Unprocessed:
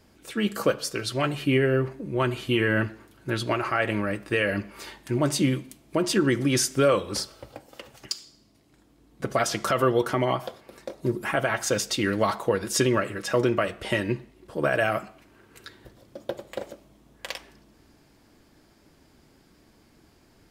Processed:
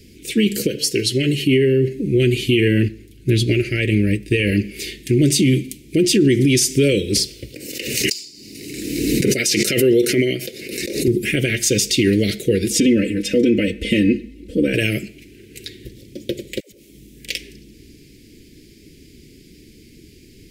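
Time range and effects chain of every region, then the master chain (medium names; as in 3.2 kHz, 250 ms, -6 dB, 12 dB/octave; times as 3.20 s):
0.67–1.97 s: comb of notches 1.2 kHz + compression 5:1, threshold -23 dBFS
2.88–4.52 s: bass shelf 100 Hz +11.5 dB + upward expansion, over -34 dBFS
7.54–11.08 s: high-pass 370 Hz 6 dB/octave + band-stop 3.3 kHz, Q 6.2 + swell ahead of each attack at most 34 dB/s
12.70–14.74 s: treble shelf 2.5 kHz -10.5 dB + comb 3.9 ms, depth 92%
16.60–17.28 s: treble shelf 7.3 kHz +7.5 dB + compression 16:1, threshold -51 dBFS + phase dispersion lows, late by 128 ms, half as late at 380 Hz
whole clip: Chebyshev band-stop 420–2200 Hz, order 3; loudness maximiser +20 dB; trim -6 dB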